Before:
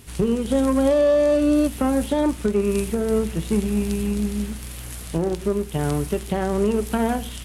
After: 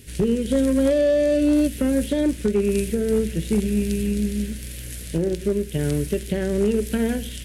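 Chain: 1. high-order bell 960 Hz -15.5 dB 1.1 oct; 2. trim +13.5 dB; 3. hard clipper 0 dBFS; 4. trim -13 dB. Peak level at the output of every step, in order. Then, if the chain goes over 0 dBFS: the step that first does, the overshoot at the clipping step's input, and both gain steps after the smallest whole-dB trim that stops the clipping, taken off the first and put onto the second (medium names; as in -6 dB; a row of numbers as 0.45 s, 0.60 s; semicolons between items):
-9.5 dBFS, +4.0 dBFS, 0.0 dBFS, -13.0 dBFS; step 2, 4.0 dB; step 2 +9.5 dB, step 4 -9 dB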